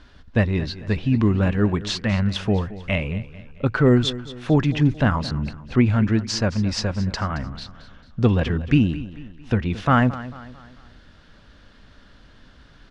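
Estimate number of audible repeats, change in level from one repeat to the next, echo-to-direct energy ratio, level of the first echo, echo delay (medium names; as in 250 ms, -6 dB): 3, -7.0 dB, -15.0 dB, -16.0 dB, 222 ms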